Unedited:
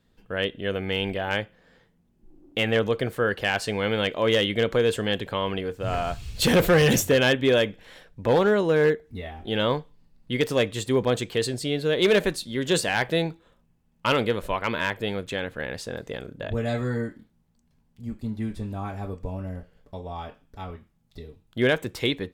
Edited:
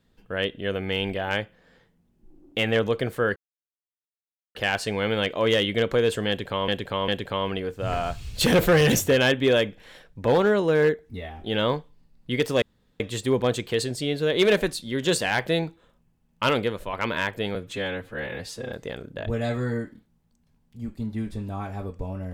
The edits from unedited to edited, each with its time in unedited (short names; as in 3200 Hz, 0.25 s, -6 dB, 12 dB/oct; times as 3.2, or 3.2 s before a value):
3.36 insert silence 1.19 s
5.09–5.49 loop, 3 plays
10.63 insert room tone 0.38 s
14.16–14.56 fade out, to -6 dB
15.18–15.96 stretch 1.5×